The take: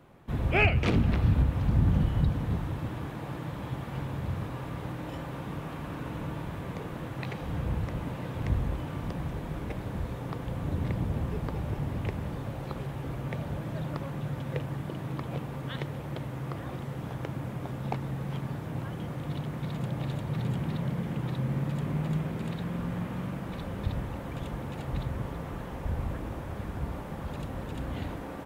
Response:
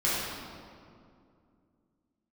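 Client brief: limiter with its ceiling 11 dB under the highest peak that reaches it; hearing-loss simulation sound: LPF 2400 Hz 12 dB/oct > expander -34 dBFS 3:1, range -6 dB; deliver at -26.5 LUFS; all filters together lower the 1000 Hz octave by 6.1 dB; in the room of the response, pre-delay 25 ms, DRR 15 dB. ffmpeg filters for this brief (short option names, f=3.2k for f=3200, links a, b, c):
-filter_complex "[0:a]equalizer=f=1k:t=o:g=-8,alimiter=limit=-23dB:level=0:latency=1,asplit=2[a][b];[1:a]atrim=start_sample=2205,adelay=25[c];[b][c]afir=irnorm=-1:irlink=0,volume=-26.5dB[d];[a][d]amix=inputs=2:normalize=0,lowpass=2.4k,agate=range=-6dB:threshold=-34dB:ratio=3,volume=8.5dB"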